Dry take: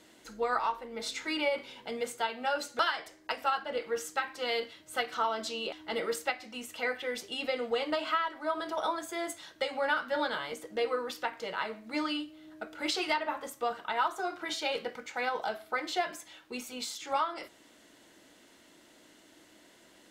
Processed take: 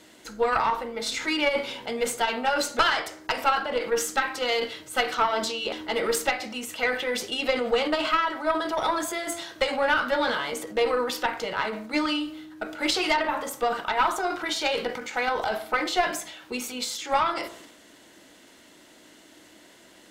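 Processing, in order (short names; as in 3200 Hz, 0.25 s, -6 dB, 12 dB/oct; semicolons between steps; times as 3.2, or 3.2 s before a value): transient shaper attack +3 dB, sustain +7 dB; tube stage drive 18 dB, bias 0.55; de-hum 56.54 Hz, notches 27; gain +8.5 dB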